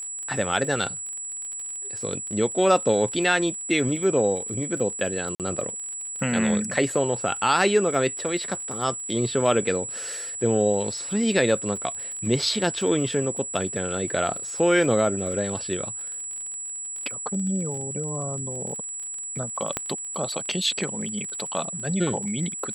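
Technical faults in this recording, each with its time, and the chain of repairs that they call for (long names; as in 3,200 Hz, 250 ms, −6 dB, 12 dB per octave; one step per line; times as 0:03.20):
surface crackle 34 per second −33 dBFS
whistle 7,800 Hz −31 dBFS
0:05.35–0:05.40: drop-out 48 ms
0:19.77: click −10 dBFS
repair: click removal
notch filter 7,800 Hz, Q 30
repair the gap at 0:05.35, 48 ms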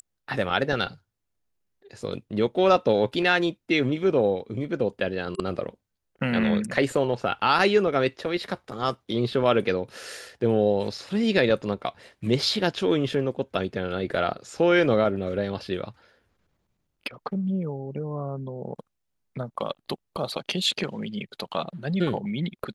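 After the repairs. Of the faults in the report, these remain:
none of them is left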